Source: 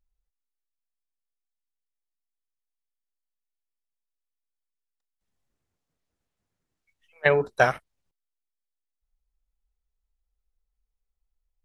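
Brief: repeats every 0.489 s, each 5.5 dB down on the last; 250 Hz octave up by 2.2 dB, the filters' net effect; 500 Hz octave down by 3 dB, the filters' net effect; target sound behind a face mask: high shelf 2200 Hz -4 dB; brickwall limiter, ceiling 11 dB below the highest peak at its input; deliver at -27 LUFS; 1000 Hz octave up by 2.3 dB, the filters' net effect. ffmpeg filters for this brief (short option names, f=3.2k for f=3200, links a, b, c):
-af "equalizer=f=250:t=o:g=5,equalizer=f=500:t=o:g=-7,equalizer=f=1k:t=o:g=7.5,alimiter=limit=-13.5dB:level=0:latency=1,highshelf=f=2.2k:g=-4,aecho=1:1:489|978|1467|1956|2445|2934|3423:0.531|0.281|0.149|0.079|0.0419|0.0222|0.0118,volume=4.5dB"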